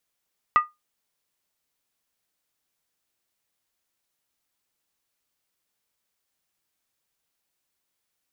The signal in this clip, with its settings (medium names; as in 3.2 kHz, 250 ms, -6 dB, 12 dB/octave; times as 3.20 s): skin hit, lowest mode 1.22 kHz, decay 0.19 s, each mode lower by 11 dB, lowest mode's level -10 dB